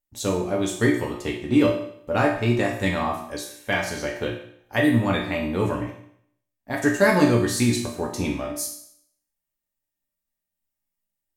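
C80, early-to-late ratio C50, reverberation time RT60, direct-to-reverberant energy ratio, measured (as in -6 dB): 8.5 dB, 5.0 dB, 0.65 s, -2.5 dB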